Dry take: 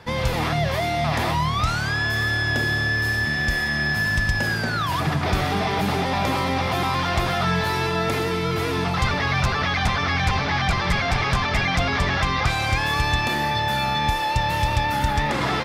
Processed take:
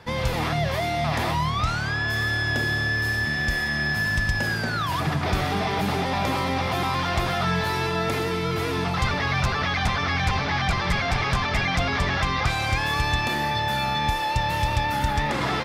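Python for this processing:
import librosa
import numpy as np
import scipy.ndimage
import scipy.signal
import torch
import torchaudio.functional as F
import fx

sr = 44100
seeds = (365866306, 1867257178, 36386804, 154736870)

y = fx.high_shelf(x, sr, hz=fx.line((1.5, 12000.0), (2.07, 5900.0)), db=-8.5, at=(1.5, 2.07), fade=0.02)
y = F.gain(torch.from_numpy(y), -2.0).numpy()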